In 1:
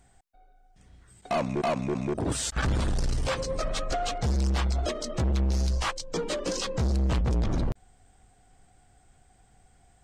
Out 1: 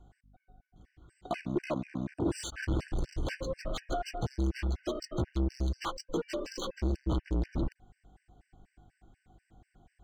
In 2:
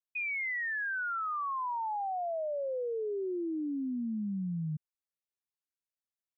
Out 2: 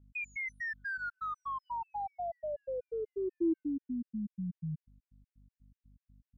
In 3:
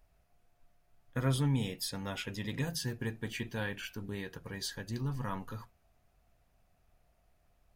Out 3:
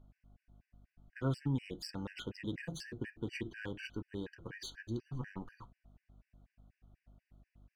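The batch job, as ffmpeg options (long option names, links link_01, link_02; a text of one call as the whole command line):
ffmpeg -i in.wav -filter_complex "[0:a]equalizer=frequency=330:width=4.8:gain=11.5,asplit=2[link_01][link_02];[link_02]acompressor=threshold=-34dB:ratio=12,volume=-1.5dB[link_03];[link_01][link_03]amix=inputs=2:normalize=0,aeval=exprs='val(0)+0.00224*(sin(2*PI*50*n/s)+sin(2*PI*2*50*n/s)/2+sin(2*PI*3*50*n/s)/3+sin(2*PI*4*50*n/s)/4+sin(2*PI*5*50*n/s)/5)':channel_layout=same,adynamicsmooth=sensitivity=4:basefreq=4200,afftfilt=real='re*gt(sin(2*PI*4.1*pts/sr)*(1-2*mod(floor(b*sr/1024/1500),2)),0)':imag='im*gt(sin(2*PI*4.1*pts/sr)*(1-2*mod(floor(b*sr/1024/1500),2)),0)':win_size=1024:overlap=0.75,volume=-6dB" out.wav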